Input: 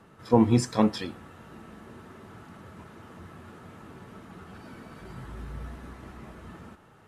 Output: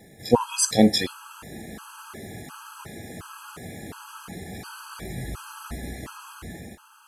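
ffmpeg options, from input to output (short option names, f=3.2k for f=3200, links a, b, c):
-af "crystalizer=i=4:c=0,dynaudnorm=f=160:g=11:m=3.5dB,afftfilt=real='re*gt(sin(2*PI*1.4*pts/sr)*(1-2*mod(floor(b*sr/1024/830),2)),0)':imag='im*gt(sin(2*PI*1.4*pts/sr)*(1-2*mod(floor(b*sr/1024/830),2)),0)':win_size=1024:overlap=0.75,volume=5dB"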